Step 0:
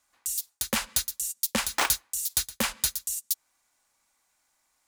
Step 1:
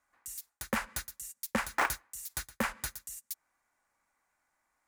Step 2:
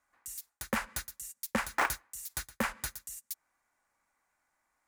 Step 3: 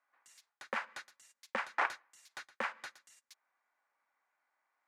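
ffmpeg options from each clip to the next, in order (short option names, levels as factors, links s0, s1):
-af "highshelf=f=2500:t=q:w=1.5:g=-9.5,volume=0.75"
-af anull
-af "highpass=480,lowpass=3400,volume=0.75"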